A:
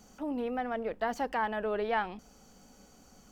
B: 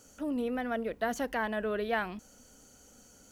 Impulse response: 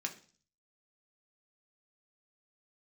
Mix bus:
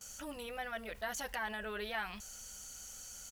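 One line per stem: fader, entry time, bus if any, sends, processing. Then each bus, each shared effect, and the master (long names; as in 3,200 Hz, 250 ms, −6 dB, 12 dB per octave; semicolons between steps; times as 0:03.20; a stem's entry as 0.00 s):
−13.5 dB, 0.00 s, no send, no processing
−1.0 dB, 11 ms, polarity flipped, no send, guitar amp tone stack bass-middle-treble 10-0-10; envelope flattener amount 50%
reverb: not used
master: no processing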